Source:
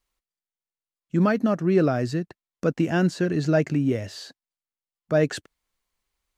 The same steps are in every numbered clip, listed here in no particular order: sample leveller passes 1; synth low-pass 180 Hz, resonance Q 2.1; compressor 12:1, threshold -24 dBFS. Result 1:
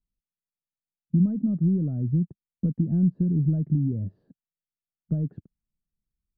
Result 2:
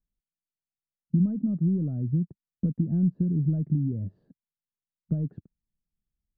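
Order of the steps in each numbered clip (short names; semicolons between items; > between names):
compressor > sample leveller > synth low-pass; sample leveller > compressor > synth low-pass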